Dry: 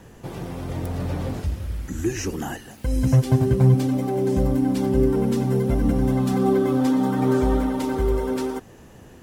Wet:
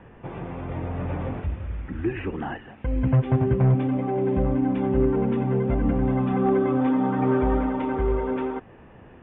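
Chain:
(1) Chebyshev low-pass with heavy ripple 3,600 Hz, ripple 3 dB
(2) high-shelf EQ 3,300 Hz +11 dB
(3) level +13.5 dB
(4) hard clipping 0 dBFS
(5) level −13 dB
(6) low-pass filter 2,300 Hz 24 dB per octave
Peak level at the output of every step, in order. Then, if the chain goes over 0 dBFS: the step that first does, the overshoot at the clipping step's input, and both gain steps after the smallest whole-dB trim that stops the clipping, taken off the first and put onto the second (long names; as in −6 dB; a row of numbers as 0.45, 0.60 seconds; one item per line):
−9.5, −9.5, +4.0, 0.0, −13.0, −12.5 dBFS
step 3, 4.0 dB
step 3 +9.5 dB, step 5 −9 dB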